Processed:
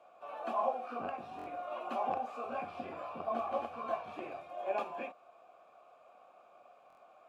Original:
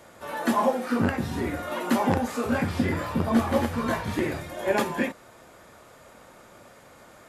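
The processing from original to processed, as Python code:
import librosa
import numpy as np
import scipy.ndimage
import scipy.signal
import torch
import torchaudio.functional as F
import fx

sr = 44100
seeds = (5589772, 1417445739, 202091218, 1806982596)

y = fx.vowel_filter(x, sr, vowel='a')
y = fx.buffer_glitch(y, sr, at_s=(1.37, 6.88), block=1024, repeats=3)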